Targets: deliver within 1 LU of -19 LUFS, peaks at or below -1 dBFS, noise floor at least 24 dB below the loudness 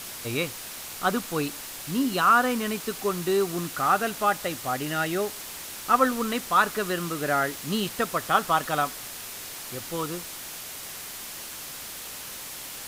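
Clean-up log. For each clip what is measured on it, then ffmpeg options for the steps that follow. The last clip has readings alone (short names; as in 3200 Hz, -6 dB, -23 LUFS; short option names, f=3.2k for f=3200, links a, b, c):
noise floor -39 dBFS; noise floor target -51 dBFS; loudness -27.0 LUFS; peak -7.5 dBFS; loudness target -19.0 LUFS
-> -af "afftdn=nr=12:nf=-39"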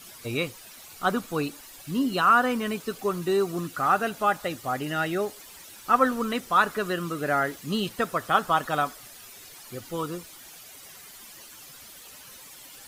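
noise floor -47 dBFS; noise floor target -50 dBFS
-> -af "afftdn=nr=6:nf=-47"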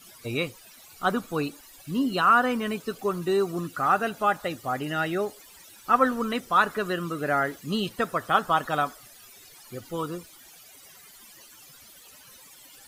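noise floor -51 dBFS; loudness -26.5 LUFS; peak -7.5 dBFS; loudness target -19.0 LUFS
-> -af "volume=7.5dB,alimiter=limit=-1dB:level=0:latency=1"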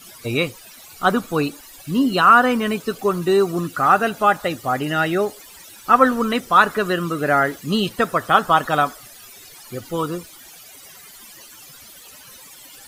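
loudness -19.0 LUFS; peak -1.0 dBFS; noise floor -43 dBFS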